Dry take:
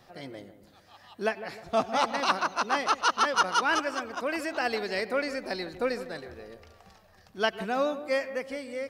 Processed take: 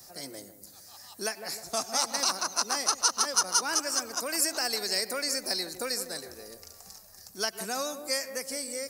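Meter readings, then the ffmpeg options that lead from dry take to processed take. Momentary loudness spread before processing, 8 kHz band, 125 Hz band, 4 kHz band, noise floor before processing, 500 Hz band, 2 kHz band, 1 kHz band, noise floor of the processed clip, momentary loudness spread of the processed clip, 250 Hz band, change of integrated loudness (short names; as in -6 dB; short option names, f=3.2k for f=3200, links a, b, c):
16 LU, +15.0 dB, n/a, +5.5 dB, -59 dBFS, -6.0 dB, -5.5 dB, -6.5 dB, -52 dBFS, 21 LU, -6.0 dB, 0.0 dB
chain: -filter_complex "[0:a]acrossover=split=180|1000[a][b][c];[a]acompressor=threshold=-58dB:ratio=4[d];[b]acompressor=threshold=-33dB:ratio=4[e];[c]acompressor=threshold=-31dB:ratio=4[f];[d][e][f]amix=inputs=3:normalize=0,aexciter=amount=14.2:drive=3.9:freq=4.8k,volume=-2dB"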